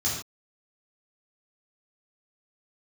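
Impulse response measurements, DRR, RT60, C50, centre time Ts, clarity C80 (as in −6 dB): −6.5 dB, non-exponential decay, 2.5 dB, 47 ms, 5.5 dB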